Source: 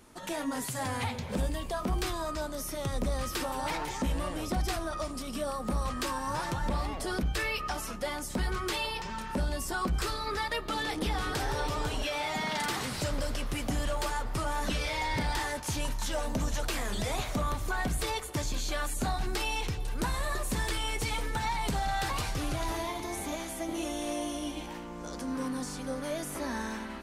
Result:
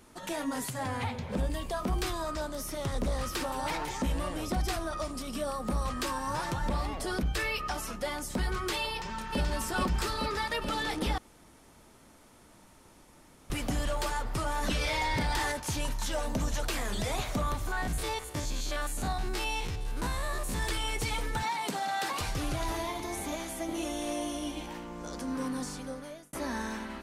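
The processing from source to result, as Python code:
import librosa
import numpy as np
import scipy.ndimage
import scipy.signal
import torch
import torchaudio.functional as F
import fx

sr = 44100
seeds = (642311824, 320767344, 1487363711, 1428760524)

y = fx.high_shelf(x, sr, hz=4100.0, db=-8.5, at=(0.7, 1.5))
y = fx.doppler_dist(y, sr, depth_ms=0.25, at=(2.23, 3.56))
y = fx.echo_throw(y, sr, start_s=8.89, length_s=0.51, ms=430, feedback_pct=75, wet_db=-1.5)
y = fx.env_flatten(y, sr, amount_pct=50, at=(14.63, 15.52))
y = fx.spec_steps(y, sr, hold_ms=50, at=(17.67, 20.63))
y = fx.highpass(y, sr, hz=200.0, slope=24, at=(21.43, 22.21))
y = fx.edit(y, sr, fx.room_tone_fill(start_s=11.18, length_s=2.32),
    fx.fade_out_span(start_s=25.66, length_s=0.67), tone=tone)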